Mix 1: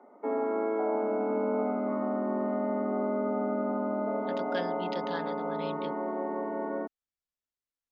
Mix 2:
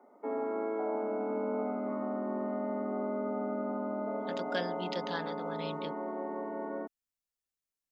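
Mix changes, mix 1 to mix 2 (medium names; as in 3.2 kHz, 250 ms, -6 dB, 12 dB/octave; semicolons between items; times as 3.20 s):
second voice: remove distance through air 88 m; background -4.5 dB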